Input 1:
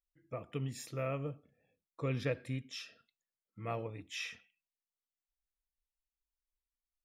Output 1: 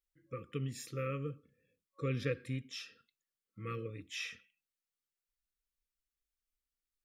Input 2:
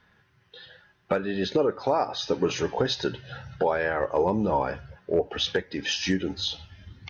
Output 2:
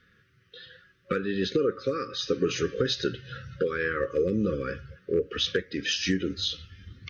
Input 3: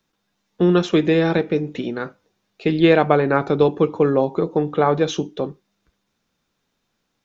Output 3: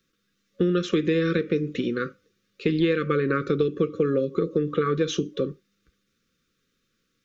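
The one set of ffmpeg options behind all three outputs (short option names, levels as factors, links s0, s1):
-af "afftfilt=real='re*(1-between(b*sr/4096,550,1100))':imag='im*(1-between(b*sr/4096,550,1100))':win_size=4096:overlap=0.75,acompressor=threshold=0.112:ratio=6"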